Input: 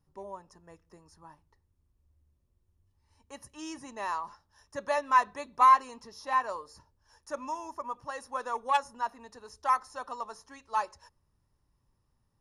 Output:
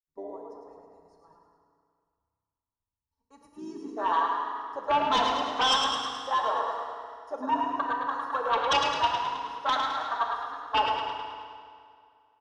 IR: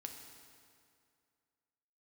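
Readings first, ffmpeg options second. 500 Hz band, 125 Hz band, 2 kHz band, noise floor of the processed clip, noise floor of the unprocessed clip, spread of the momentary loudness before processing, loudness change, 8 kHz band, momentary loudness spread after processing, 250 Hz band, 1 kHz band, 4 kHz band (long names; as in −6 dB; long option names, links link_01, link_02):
+5.0 dB, can't be measured, +4.5 dB, below −85 dBFS, −75 dBFS, 20 LU, +2.0 dB, +5.5 dB, 17 LU, +8.0 dB, +2.0 dB, +18.0 dB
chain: -filter_complex "[0:a]agate=range=-33dB:threshold=-58dB:ratio=3:detection=peak,highshelf=frequency=1800:width_type=q:width=1.5:gain=-11,afwtdn=0.0282,equalizer=frequency=4400:width=1.3:gain=12.5,aecho=1:1:4.4:0.58,aeval=exprs='0.335*sin(PI/2*3.98*val(0)/0.335)':channel_layout=same,asplit=8[link_01][link_02][link_03][link_04][link_05][link_06][link_07][link_08];[link_02]adelay=106,afreqshift=32,volume=-5dB[link_09];[link_03]adelay=212,afreqshift=64,volume=-10dB[link_10];[link_04]adelay=318,afreqshift=96,volume=-15.1dB[link_11];[link_05]adelay=424,afreqshift=128,volume=-20.1dB[link_12];[link_06]adelay=530,afreqshift=160,volume=-25.1dB[link_13];[link_07]adelay=636,afreqshift=192,volume=-30.2dB[link_14];[link_08]adelay=742,afreqshift=224,volume=-35.2dB[link_15];[link_01][link_09][link_10][link_11][link_12][link_13][link_14][link_15]amix=inputs=8:normalize=0[link_16];[1:a]atrim=start_sample=2205[link_17];[link_16][link_17]afir=irnorm=-1:irlink=0,volume=-6dB"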